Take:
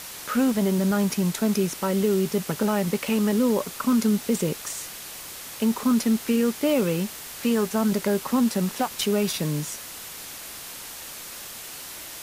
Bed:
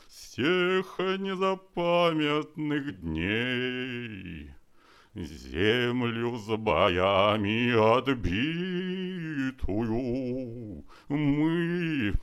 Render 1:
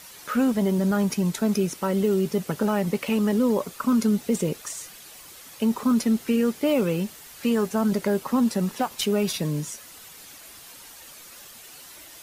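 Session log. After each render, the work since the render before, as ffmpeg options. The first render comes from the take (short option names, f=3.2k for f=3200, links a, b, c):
-af "afftdn=nr=9:nf=-39"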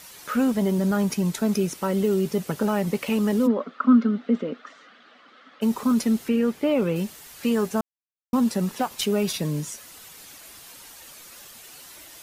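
-filter_complex "[0:a]asplit=3[a][b][c];[a]afade=t=out:st=3.46:d=0.02[d];[b]highpass=f=240:w=0.5412,highpass=f=240:w=1.3066,equalizer=f=250:t=q:w=4:g=10,equalizer=f=360:t=q:w=4:g=-9,equalizer=f=920:t=q:w=4:g=-8,equalizer=f=1.3k:t=q:w=4:g=8,equalizer=f=2.5k:t=q:w=4:g=-8,lowpass=f=3.1k:w=0.5412,lowpass=f=3.1k:w=1.3066,afade=t=in:st=3.46:d=0.02,afade=t=out:st=5.61:d=0.02[e];[c]afade=t=in:st=5.61:d=0.02[f];[d][e][f]amix=inputs=3:normalize=0,asettb=1/sr,asplit=3[g][h][i];[g]atrim=end=6.284[j];[h]atrim=start=6.28:end=6.96,asetpts=PTS-STARTPTS,afade=t=in:d=0.004:c=qsin,afade=t=out:st=0.676:d=0.004:c=qsin,acrossover=split=3400[k][l];[l]acompressor=threshold=-50dB:ratio=4:attack=1:release=60[m];[k][m]amix=inputs=2:normalize=0[n];[i]atrim=start=6.956[o];[j][n]acrossfade=d=0.004:c1=hsin:c2=qsin[p];[p][o]acrossfade=d=0.004:c1=qsin:c2=hsin,asplit=3[q][r][s];[q]atrim=end=7.81,asetpts=PTS-STARTPTS,afade=t=out:st=7.806:d=0.004:c=hsin[t];[r]atrim=start=7.81:end=8.33,asetpts=PTS-STARTPTS,volume=0[u];[s]atrim=start=8.33,asetpts=PTS-STARTPTS,afade=t=in:d=0.004:c=hsin[v];[t][u][v]concat=n=3:v=0:a=1"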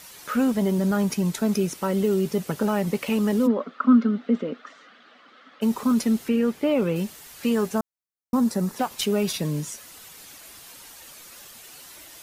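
-filter_complex "[0:a]asettb=1/sr,asplit=3[a][b][c];[a]atrim=end=7.784[d];[b]atrim=start=7.78:end=8.79,asetpts=PTS-STARTPTS,afade=t=in:d=0.004:c=qsin,afade=t=out:st=1.006:d=0.004:c=qsin,equalizer=f=2.9k:t=o:w=0.77:g=-9[e];[c]atrim=start=8.786[f];[d][e]acrossfade=d=0.004:c1=hsin:c2=qsin[g];[g][f]acrossfade=d=0.004:c1=qsin:c2=hsin"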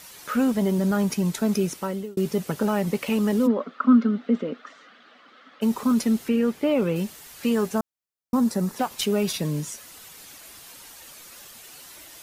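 -filter_complex "[0:a]asplit=2[a][b];[a]atrim=end=2.17,asetpts=PTS-STARTPTS,afade=t=out:st=1.73:d=0.44[c];[b]atrim=start=2.17,asetpts=PTS-STARTPTS,afade=t=in:d=0.004:c=hsin[d];[c][d]concat=n=2:v=0:a=1"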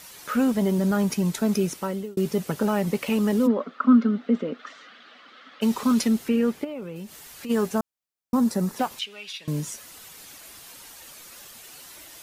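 -filter_complex "[0:a]asettb=1/sr,asplit=3[a][b][c];[a]atrim=end=4.594[d];[b]atrim=start=4.59:end=6.08,asetpts=PTS-STARTPTS,afade=t=in:d=0.004:c=qsin,afade=t=out:st=1.486:d=0.004:c=qsin,equalizer=f=3.6k:w=0.51:g=5.5[e];[c]atrim=start=6.076[f];[d][e]acrossfade=d=0.004:c1=hsin:c2=qsin[g];[g][f]acrossfade=d=0.004:c1=qsin:c2=hsin,asplit=3[h][i][j];[h]afade=t=out:st=6.63:d=0.02[k];[i]acompressor=threshold=-38dB:ratio=2.5:attack=3.2:release=140:knee=1:detection=peak,afade=t=in:st=6.63:d=0.02,afade=t=out:st=7.49:d=0.02[l];[j]afade=t=in:st=7.49:d=0.02[m];[k][l][m]amix=inputs=3:normalize=0,asettb=1/sr,asplit=3[n][o][p];[n]atrim=end=8.994[q];[o]atrim=start=8.99:end=9.48,asetpts=PTS-STARTPTS,afade=t=in:d=0.004:c=qsin,afade=t=out:st=0.486:d=0.004:c=qsin,bandpass=f=2.9k:t=q:w=2.2[r];[p]atrim=start=9.476[s];[q][r]acrossfade=d=0.004:c1=hsin:c2=qsin[t];[t][s]acrossfade=d=0.004:c1=qsin:c2=hsin"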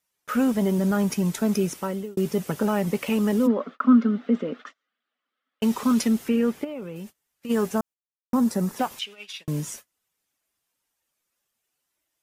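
-af "agate=range=-34dB:threshold=-39dB:ratio=16:detection=peak,equalizer=f=4.2k:t=o:w=0.34:g=-4"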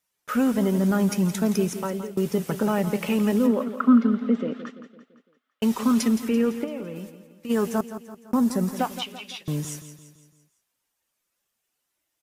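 -af "aecho=1:1:169|338|507|676|845:0.251|0.126|0.0628|0.0314|0.0157"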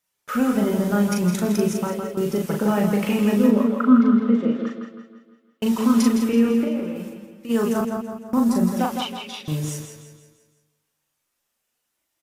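-filter_complex "[0:a]asplit=2[a][b];[b]adelay=39,volume=-3dB[c];[a][c]amix=inputs=2:normalize=0,asplit=2[d][e];[e]adelay=160,lowpass=f=3.5k:p=1,volume=-5.5dB,asplit=2[f][g];[g]adelay=160,lowpass=f=3.5k:p=1,volume=0.41,asplit=2[h][i];[i]adelay=160,lowpass=f=3.5k:p=1,volume=0.41,asplit=2[j][k];[k]adelay=160,lowpass=f=3.5k:p=1,volume=0.41,asplit=2[l][m];[m]adelay=160,lowpass=f=3.5k:p=1,volume=0.41[n];[f][h][j][l][n]amix=inputs=5:normalize=0[o];[d][o]amix=inputs=2:normalize=0"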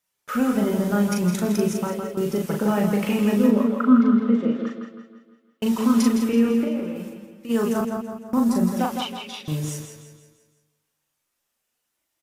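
-af "volume=-1dB"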